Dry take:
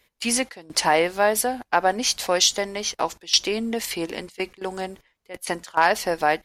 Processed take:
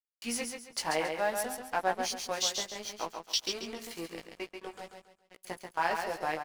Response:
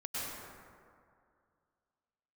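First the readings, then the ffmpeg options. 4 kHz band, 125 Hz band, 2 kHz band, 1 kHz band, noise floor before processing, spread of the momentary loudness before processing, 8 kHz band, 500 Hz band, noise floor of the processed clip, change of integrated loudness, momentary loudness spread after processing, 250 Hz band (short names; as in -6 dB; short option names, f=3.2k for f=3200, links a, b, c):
-11.0 dB, -11.5 dB, -11.0 dB, -11.0 dB, -70 dBFS, 12 LU, -11.5 dB, -11.5 dB, -77 dBFS, -11.0 dB, 14 LU, -12.5 dB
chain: -af "flanger=delay=16:depth=3.1:speed=0.56,aeval=exprs='sgn(val(0))*max(abs(val(0))-0.015,0)':c=same,aecho=1:1:137|274|411|548:0.531|0.165|0.051|0.0158,volume=-8dB"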